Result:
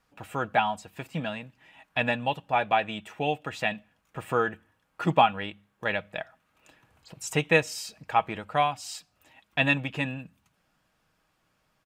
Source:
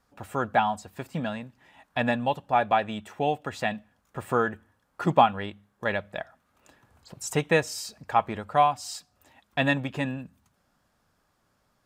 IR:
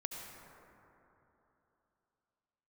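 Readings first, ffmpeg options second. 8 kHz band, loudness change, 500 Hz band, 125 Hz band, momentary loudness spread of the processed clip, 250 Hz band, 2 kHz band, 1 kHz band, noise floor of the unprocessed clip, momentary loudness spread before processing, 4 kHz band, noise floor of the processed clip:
-1.5 dB, -1.0 dB, -1.5 dB, -1.0 dB, 15 LU, -2.5 dB, +2.0 dB, -2.0 dB, -71 dBFS, 16 LU, +2.0 dB, -73 dBFS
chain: -af "equalizer=f=2.6k:t=o:w=0.79:g=8,aecho=1:1:6.3:0.3,volume=-2.5dB"

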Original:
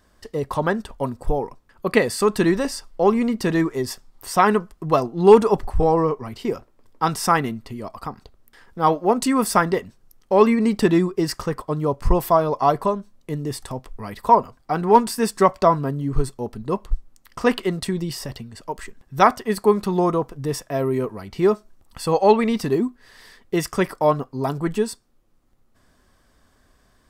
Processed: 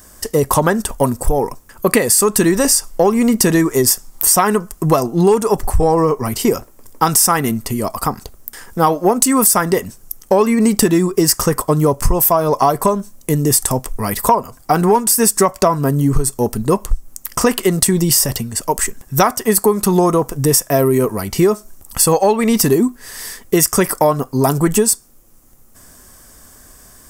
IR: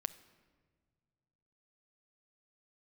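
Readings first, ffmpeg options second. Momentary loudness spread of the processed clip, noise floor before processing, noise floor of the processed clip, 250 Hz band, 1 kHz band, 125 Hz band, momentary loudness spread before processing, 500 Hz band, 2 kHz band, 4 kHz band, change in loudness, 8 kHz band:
9 LU, -60 dBFS, -45 dBFS, +6.5 dB, +3.0 dB, +8.0 dB, 15 LU, +4.5 dB, +4.5 dB, +10.0 dB, +6.0 dB, +19.5 dB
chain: -af "aexciter=amount=5.4:drive=5.3:freq=5.7k,acompressor=threshold=-21dB:ratio=12,aeval=exprs='0.75*sin(PI/2*2.24*val(0)/0.75)':c=same,volume=1.5dB"

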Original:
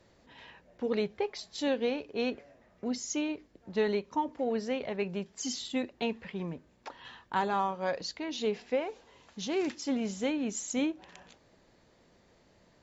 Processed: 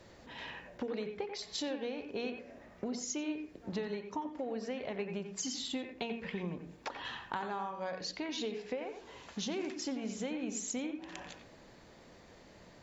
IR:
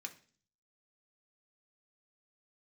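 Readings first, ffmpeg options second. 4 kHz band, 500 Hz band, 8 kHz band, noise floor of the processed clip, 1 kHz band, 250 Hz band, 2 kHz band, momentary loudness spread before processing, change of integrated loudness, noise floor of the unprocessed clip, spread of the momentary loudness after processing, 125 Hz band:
-2.0 dB, -7.0 dB, n/a, -58 dBFS, -7.0 dB, -5.5 dB, -4.0 dB, 15 LU, -6.0 dB, -65 dBFS, 15 LU, -3.0 dB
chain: -filter_complex "[0:a]bandreject=f=46.66:t=h:w=4,bandreject=f=93.32:t=h:w=4,bandreject=f=139.98:t=h:w=4,bandreject=f=186.64:t=h:w=4,bandreject=f=233.3:t=h:w=4,bandreject=f=279.96:t=h:w=4,bandreject=f=326.62:t=h:w=4,bandreject=f=373.28:t=h:w=4,bandreject=f=419.94:t=h:w=4,bandreject=f=466.6:t=h:w=4,acompressor=threshold=-42dB:ratio=10,asplit=2[a][b];[1:a]atrim=start_sample=2205,lowpass=2.7k,adelay=89[c];[b][c]afir=irnorm=-1:irlink=0,volume=-2dB[d];[a][d]amix=inputs=2:normalize=0,volume=6.5dB"

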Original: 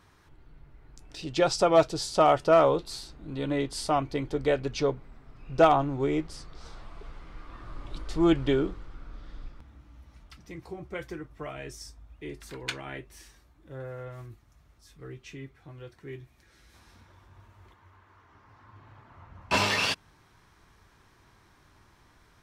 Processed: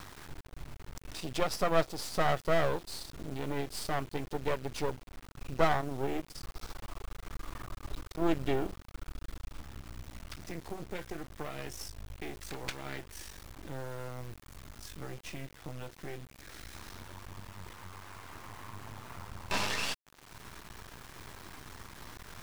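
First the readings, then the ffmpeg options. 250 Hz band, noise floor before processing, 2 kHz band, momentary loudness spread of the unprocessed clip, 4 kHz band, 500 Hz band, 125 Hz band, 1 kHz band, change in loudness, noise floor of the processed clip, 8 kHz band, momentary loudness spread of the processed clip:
-8.0 dB, -61 dBFS, -4.0 dB, 24 LU, -6.0 dB, -8.5 dB, -4.0 dB, -7.5 dB, -10.5 dB, -55 dBFS, -3.5 dB, 18 LU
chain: -af "acompressor=mode=upward:threshold=-26dB:ratio=2.5,acrusher=bits=5:dc=4:mix=0:aa=0.000001,aeval=exprs='max(val(0),0)':c=same,volume=-3dB"

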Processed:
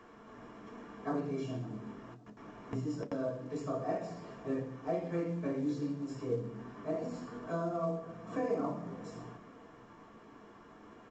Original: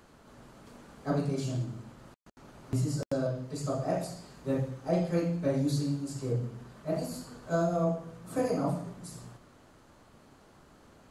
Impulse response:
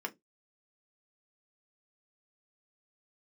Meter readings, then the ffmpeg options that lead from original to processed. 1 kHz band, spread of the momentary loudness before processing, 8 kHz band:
-3.0 dB, 14 LU, -15.0 dB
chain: -filter_complex "[0:a]lowpass=f=3.9k:p=1,acompressor=threshold=-38dB:ratio=2,asplit=2[a][b];[b]adelay=559,lowpass=f=1.1k:p=1,volume=-17dB,asplit=2[c][d];[d]adelay=559,lowpass=f=1.1k:p=1,volume=0.32,asplit=2[e][f];[f]adelay=559,lowpass=f=1.1k:p=1,volume=0.32[g];[a][c][e][g]amix=inputs=4:normalize=0[h];[1:a]atrim=start_sample=2205[i];[h][i]afir=irnorm=-1:irlink=0,volume=1dB" -ar 16000 -c:a pcm_mulaw

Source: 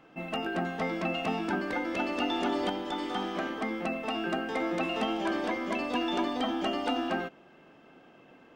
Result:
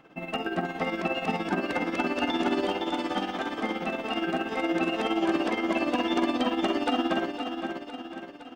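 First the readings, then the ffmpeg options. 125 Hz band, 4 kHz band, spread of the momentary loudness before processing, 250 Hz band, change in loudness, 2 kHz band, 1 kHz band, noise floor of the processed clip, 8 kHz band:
+2.0 dB, +2.5 dB, 4 LU, +4.0 dB, +3.0 dB, +3.0 dB, +2.5 dB, -43 dBFS, +2.5 dB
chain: -filter_complex "[0:a]asplit=2[a][b];[b]adelay=48,volume=-12dB[c];[a][c]amix=inputs=2:normalize=0,aecho=1:1:511|1022|1533|2044|2555|3066:0.501|0.241|0.115|0.0554|0.0266|0.0128,tremolo=f=17:d=0.59,volume=4dB"

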